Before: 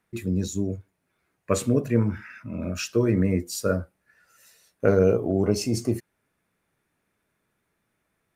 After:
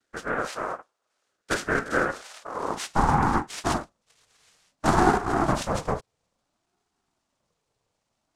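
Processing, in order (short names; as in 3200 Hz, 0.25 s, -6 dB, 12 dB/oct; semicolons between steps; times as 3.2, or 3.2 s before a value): noise vocoder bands 2; high-pass sweep 980 Hz -> 150 Hz, 2.38–3.72; ring modulator with a swept carrier 420 Hz, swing 35%, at 0.58 Hz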